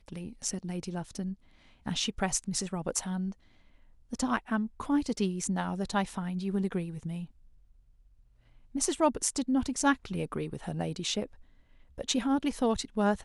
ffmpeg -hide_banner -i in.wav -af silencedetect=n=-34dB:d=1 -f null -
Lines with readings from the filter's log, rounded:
silence_start: 7.24
silence_end: 8.75 | silence_duration: 1.51